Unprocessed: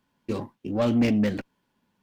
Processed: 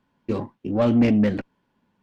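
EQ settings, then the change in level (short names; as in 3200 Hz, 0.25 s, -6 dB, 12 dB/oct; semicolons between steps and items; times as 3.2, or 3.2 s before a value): LPF 2200 Hz 6 dB/oct; +4.0 dB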